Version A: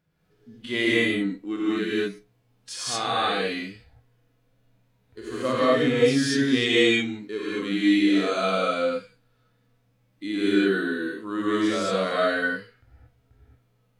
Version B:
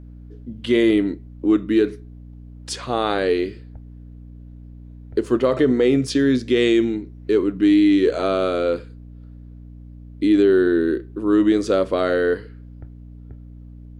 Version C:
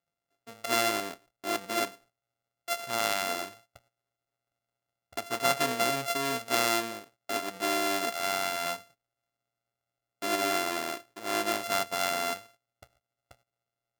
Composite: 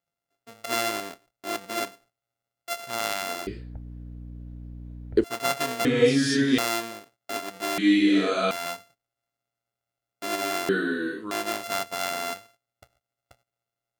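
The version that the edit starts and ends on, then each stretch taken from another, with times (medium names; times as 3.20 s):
C
3.47–5.24 s: from B
5.85–6.58 s: from A
7.78–8.51 s: from A
10.69–11.31 s: from A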